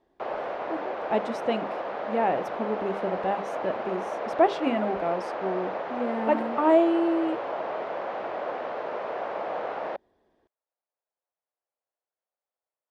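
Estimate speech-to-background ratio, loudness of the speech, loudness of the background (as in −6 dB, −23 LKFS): 4.5 dB, −28.0 LKFS, −32.5 LKFS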